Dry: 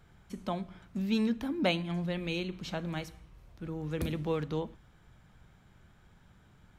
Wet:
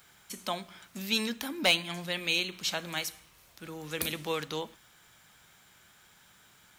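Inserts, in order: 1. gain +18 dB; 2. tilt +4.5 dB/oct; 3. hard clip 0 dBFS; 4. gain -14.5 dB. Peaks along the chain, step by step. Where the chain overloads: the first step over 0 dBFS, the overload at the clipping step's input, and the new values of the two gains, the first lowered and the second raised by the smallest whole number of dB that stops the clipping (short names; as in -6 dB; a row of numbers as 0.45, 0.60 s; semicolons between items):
+3.0, +8.0, 0.0, -14.5 dBFS; step 1, 8.0 dB; step 1 +10 dB, step 4 -6.5 dB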